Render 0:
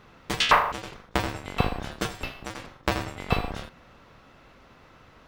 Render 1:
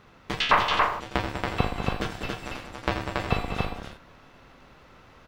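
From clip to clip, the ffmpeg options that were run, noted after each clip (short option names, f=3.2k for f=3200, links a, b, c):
-filter_complex "[0:a]aeval=exprs='if(lt(val(0),0),0.708*val(0),val(0))':c=same,acrossover=split=4800[a][b];[b]acompressor=threshold=-51dB:ratio=4:attack=1:release=60[c];[a][c]amix=inputs=2:normalize=0,aecho=1:1:198.3|279.9:0.355|0.708"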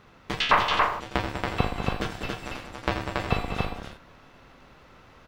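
-af anull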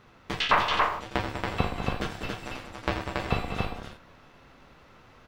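-af "flanger=delay=8:depth=6.8:regen=-61:speed=0.78:shape=sinusoidal,volume=2.5dB"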